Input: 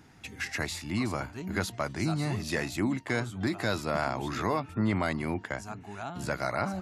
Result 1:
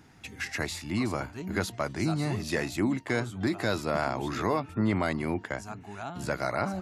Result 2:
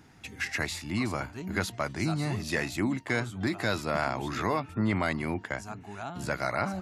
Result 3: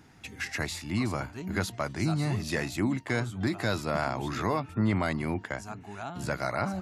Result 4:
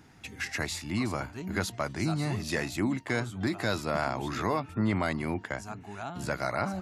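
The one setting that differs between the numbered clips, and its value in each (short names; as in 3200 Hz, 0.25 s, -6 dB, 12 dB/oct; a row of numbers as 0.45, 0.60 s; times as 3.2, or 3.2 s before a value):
dynamic EQ, frequency: 400, 2200, 120, 6500 Hz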